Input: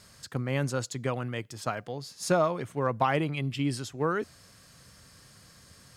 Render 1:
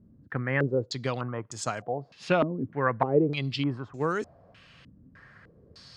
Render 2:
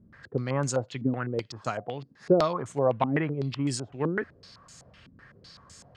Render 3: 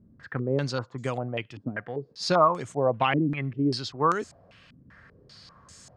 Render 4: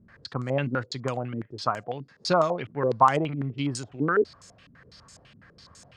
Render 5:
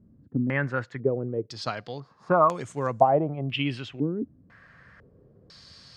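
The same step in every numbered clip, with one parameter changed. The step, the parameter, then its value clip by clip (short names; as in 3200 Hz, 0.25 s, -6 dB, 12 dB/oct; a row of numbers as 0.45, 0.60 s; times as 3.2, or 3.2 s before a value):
stepped low-pass, rate: 3.3, 7.9, 5.1, 12, 2 Hz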